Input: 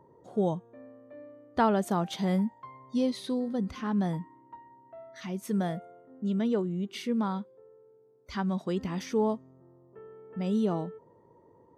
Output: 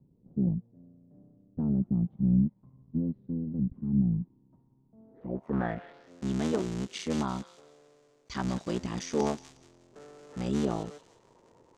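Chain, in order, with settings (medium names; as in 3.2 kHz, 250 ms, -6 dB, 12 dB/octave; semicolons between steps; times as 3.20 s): cycle switcher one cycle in 3, muted; low-pass sweep 180 Hz -> 7.1 kHz, 4.94–6.13 s; feedback echo behind a high-pass 180 ms, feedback 31%, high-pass 2.4 kHz, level -8 dB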